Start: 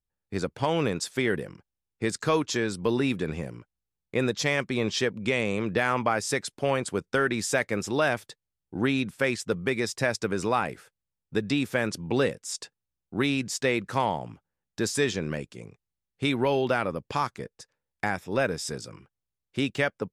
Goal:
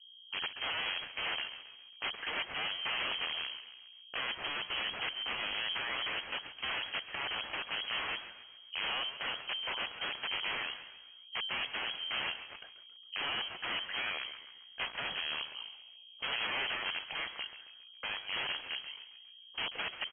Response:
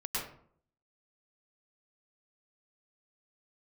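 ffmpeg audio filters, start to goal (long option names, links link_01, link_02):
-filter_complex "[0:a]asplit=2[link_01][link_02];[link_02]asoftclip=type=hard:threshold=-24dB,volume=-8dB[link_03];[link_01][link_03]amix=inputs=2:normalize=0,aeval=exprs='val(0)+0.00398*(sin(2*PI*60*n/s)+sin(2*PI*2*60*n/s)/2+sin(2*PI*3*60*n/s)/3+sin(2*PI*4*60*n/s)/4+sin(2*PI*5*60*n/s)/5)':channel_layout=same,aeval=exprs='(mod(13.3*val(0)+1,2)-1)/13.3':channel_layout=same,asplit=5[link_04][link_05][link_06][link_07][link_08];[link_05]adelay=136,afreqshift=110,volume=-12.5dB[link_09];[link_06]adelay=272,afreqshift=220,volume=-19.4dB[link_10];[link_07]adelay=408,afreqshift=330,volume=-26.4dB[link_11];[link_08]adelay=544,afreqshift=440,volume=-33.3dB[link_12];[link_04][link_09][link_10][link_11][link_12]amix=inputs=5:normalize=0,lowpass=frequency=2800:width_type=q:width=0.5098,lowpass=frequency=2800:width_type=q:width=0.6013,lowpass=frequency=2800:width_type=q:width=0.9,lowpass=frequency=2800:width_type=q:width=2.563,afreqshift=-3300,volume=-6.5dB"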